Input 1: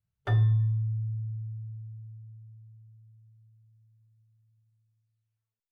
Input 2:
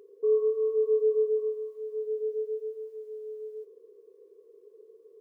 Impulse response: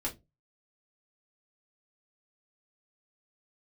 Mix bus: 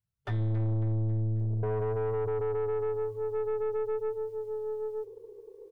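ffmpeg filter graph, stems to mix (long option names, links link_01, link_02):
-filter_complex "[0:a]dynaudnorm=framelen=130:gausssize=7:maxgain=8.5dB,volume=-8.5dB,asplit=2[link_01][link_02];[link_02]volume=-8dB[link_03];[1:a]alimiter=level_in=5dB:limit=-24dB:level=0:latency=1:release=77,volume=-5dB,adelay=1400,volume=2dB[link_04];[link_03]aecho=0:1:272|544|816|1088|1360|1632:1|0.45|0.202|0.0911|0.041|0.0185[link_05];[link_01][link_04][link_05]amix=inputs=3:normalize=0,acontrast=22,aeval=exprs='(tanh(22.4*val(0)+0.35)-tanh(0.35))/22.4':channel_layout=same"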